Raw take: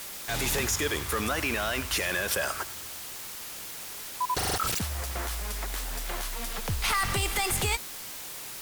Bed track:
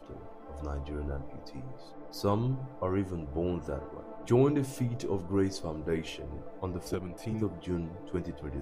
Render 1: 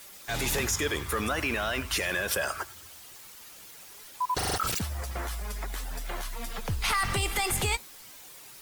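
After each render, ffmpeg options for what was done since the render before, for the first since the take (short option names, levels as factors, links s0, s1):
-af "afftdn=nr=10:nf=-40"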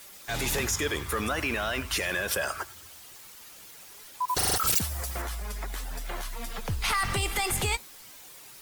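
-filter_complex "[0:a]asettb=1/sr,asplit=3[s0][s1][s2];[s0]atrim=end=4.284[s3];[s1]atrim=start=4.28:end=5.22,asetpts=PTS-STARTPTS,afade=t=in:d=0.004:c=qsin,afade=t=out:st=0.936:d=0.004:c=qsin,aemphasis=mode=production:type=cd[s4];[s2]atrim=start=5.216[s5];[s3][s4]acrossfade=d=0.004:c1=hsin:c2=qsin[s6];[s6][s5]acrossfade=d=0.004:c1=qsin:c2=hsin"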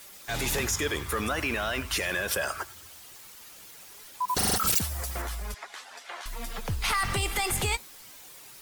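-filter_complex "[0:a]asettb=1/sr,asplit=3[s0][s1][s2];[s0]atrim=end=4.254[s3];[s1]atrim=start=4.25:end=4.69,asetpts=PTS-STARTPTS,afade=t=in:d=0.004:c=qsin,afade=t=out:st=0.436:d=0.004:c=qsin,equalizer=f=210:w=4.1:g=15[s4];[s2]atrim=start=4.686[s5];[s3][s4]acrossfade=d=0.004:c1=hsin:c2=qsin[s6];[s6][s5]acrossfade=d=0.004:c1=qsin:c2=hsin,asettb=1/sr,asplit=3[s7][s8][s9];[s7]atrim=end=5.544[s10];[s8]atrim=start=5.54:end=6.26,asetpts=PTS-STARTPTS,afade=t=in:d=0.004:c=qsin,afade=t=out:st=0.716:d=0.004:c=qsin,highpass=720,lowpass=6100[s11];[s9]atrim=start=6.256[s12];[s10][s11]acrossfade=d=0.004:c1=hsin:c2=qsin[s13];[s13][s12]acrossfade=d=0.004:c1=qsin:c2=hsin"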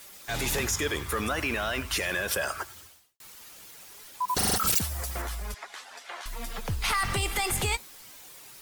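-filter_complex "[0:a]asplit=2[s0][s1];[s0]atrim=end=3.2,asetpts=PTS-STARTPTS,afade=t=out:st=2.8:d=0.4:c=qua[s2];[s1]atrim=start=3.2,asetpts=PTS-STARTPTS,afade=t=in:d=0.004:c=hsin[s3];[s2][s3]concat=n=2:v=0:a=1"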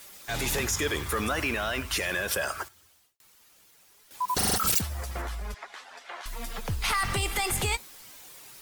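-filter_complex "[0:a]asettb=1/sr,asplit=3[s0][s1][s2];[s0]atrim=end=0.764[s3];[s1]atrim=start=0.76:end=1.51,asetpts=PTS-STARTPTS,afade=t=in:d=0.004:c=qsin,afade=t=out:st=0.746:d=0.004:c=qsin,aeval=exprs='val(0)+0.5*0.00891*sgn(val(0))':c=same[s4];[s2]atrim=start=1.506[s5];[s3][s4]acrossfade=d=0.004:c1=hsin:c2=qsin[s6];[s6][s5]acrossfade=d=0.004:c1=qsin:c2=hsin,asettb=1/sr,asplit=3[s7][s8][s9];[s7]atrim=end=2.684[s10];[s8]atrim=start=2.68:end=4.11,asetpts=PTS-STARTPTS,afade=t=in:d=0.004:c=qsin,afade=t=out:st=1.426:d=0.004:c=qsin,acompressor=threshold=0.00112:ratio=3:attack=3.2:release=140:knee=1:detection=peak[s11];[s9]atrim=start=4.106[s12];[s10][s11]acrossfade=d=0.004:c1=hsin:c2=qsin[s13];[s13][s12]acrossfade=d=0.004:c1=qsin:c2=hsin,asettb=1/sr,asplit=3[s14][s15][s16];[s14]atrim=end=4.814[s17];[s15]atrim=start=4.81:end=6.24,asetpts=PTS-STARTPTS,afade=t=in:d=0.004:c=qsin,afade=t=out:st=1.426:d=0.004:c=qsin,aemphasis=mode=reproduction:type=cd[s18];[s16]atrim=start=6.236[s19];[s17][s18]acrossfade=d=0.004:c1=hsin:c2=qsin[s20];[s20][s19]acrossfade=d=0.004:c1=qsin:c2=hsin"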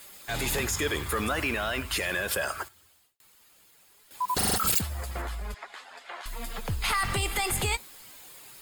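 -af "bandreject=f=5800:w=6.6"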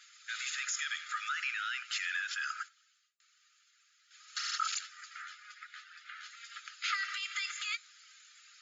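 -af "equalizer=f=3100:w=0.46:g=-5.5,afftfilt=real='re*between(b*sr/4096,1200,7300)':imag='im*between(b*sr/4096,1200,7300)':win_size=4096:overlap=0.75"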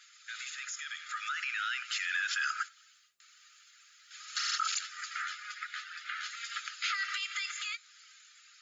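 -af "alimiter=level_in=2.37:limit=0.0631:level=0:latency=1:release=262,volume=0.422,dynaudnorm=f=270:g=11:m=2.82"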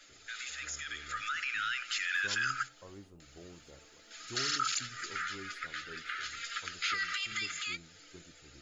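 -filter_complex "[1:a]volume=0.0944[s0];[0:a][s0]amix=inputs=2:normalize=0"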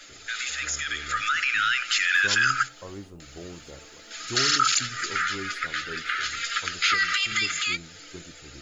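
-af "volume=3.55"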